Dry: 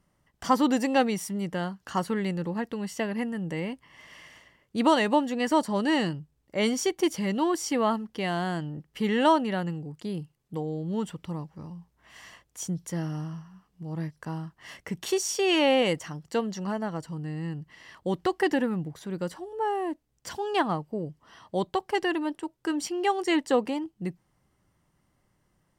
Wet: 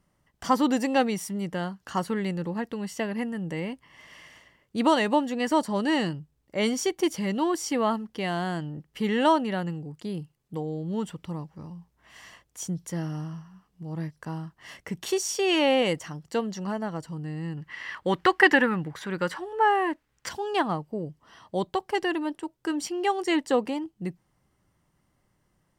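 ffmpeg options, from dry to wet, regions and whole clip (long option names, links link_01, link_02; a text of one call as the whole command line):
ffmpeg -i in.wav -filter_complex "[0:a]asettb=1/sr,asplit=3[link_01][link_02][link_03];[link_01]atrim=end=17.574[link_04];[link_02]atrim=start=17.57:end=20.29,asetpts=PTS-STARTPTS,afade=type=in:duration=0.004:curve=qsin,afade=type=out:start_time=2.716:duration=0.004:curve=qsin,equalizer=frequency=1700:width_type=o:width=2.3:gain=14,bandreject=frequency=690:width=9.2[link_05];[link_03]atrim=start=20.286[link_06];[link_04][link_05]acrossfade=duration=0.004:curve1=hsin:curve2=qsin[link_07];[link_07][link_06]acrossfade=duration=0.004:curve1=qsin:curve2=hsin" out.wav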